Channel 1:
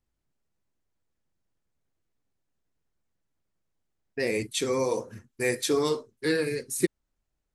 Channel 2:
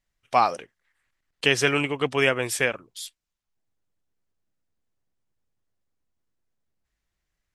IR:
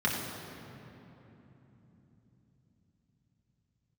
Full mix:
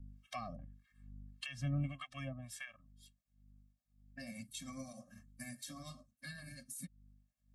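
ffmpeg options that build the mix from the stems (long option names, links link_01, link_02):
-filter_complex "[0:a]highpass=190,highshelf=frequency=6300:gain=7,tremolo=f=10:d=0.4,volume=-5.5dB[link_01];[1:a]aeval=exprs='val(0)+0.00355*(sin(2*PI*50*n/s)+sin(2*PI*2*50*n/s)/2+sin(2*PI*3*50*n/s)/3+sin(2*PI*4*50*n/s)/4+sin(2*PI*5*50*n/s)/5)':channel_layout=same,acrossover=split=940[link_02][link_03];[link_02]aeval=exprs='val(0)*(1-1/2+1/2*cos(2*PI*1.7*n/s))':channel_layout=same[link_04];[link_03]aeval=exprs='val(0)*(1-1/2-1/2*cos(2*PI*1.7*n/s))':channel_layout=same[link_05];[link_04][link_05]amix=inputs=2:normalize=0,afade=type=out:start_time=1.85:duration=0.57:silence=0.266073[link_06];[link_01][link_06]amix=inputs=2:normalize=0,acrossover=split=270[link_07][link_08];[link_08]acompressor=threshold=-42dB:ratio=6[link_09];[link_07][link_09]amix=inputs=2:normalize=0,afftfilt=real='re*eq(mod(floor(b*sr/1024/260),2),0)':imag='im*eq(mod(floor(b*sr/1024/260),2),0)':win_size=1024:overlap=0.75"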